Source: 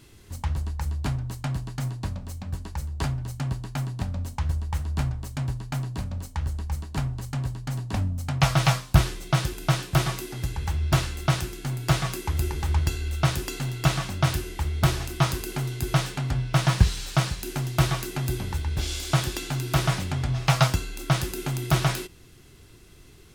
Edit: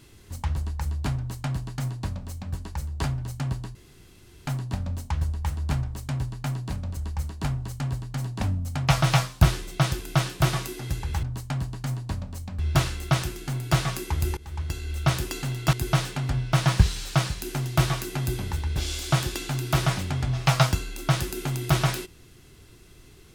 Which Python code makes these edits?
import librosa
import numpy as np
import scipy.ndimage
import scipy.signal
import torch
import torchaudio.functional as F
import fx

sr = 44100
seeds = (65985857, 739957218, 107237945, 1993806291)

y = fx.edit(x, sr, fx.duplicate(start_s=1.17, length_s=1.36, to_s=10.76),
    fx.insert_room_tone(at_s=3.75, length_s=0.72),
    fx.cut(start_s=6.25, length_s=0.25),
    fx.fade_in_from(start_s=12.54, length_s=0.72, floor_db=-19.5),
    fx.cut(start_s=13.9, length_s=1.84), tone=tone)